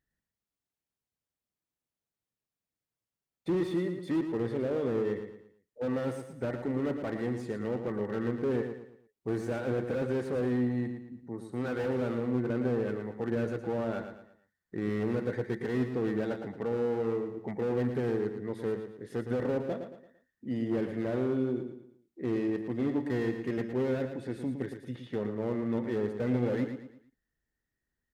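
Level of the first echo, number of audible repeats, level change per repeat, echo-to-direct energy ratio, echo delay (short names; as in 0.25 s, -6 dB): -8.0 dB, 4, -8.5 dB, -7.5 dB, 0.113 s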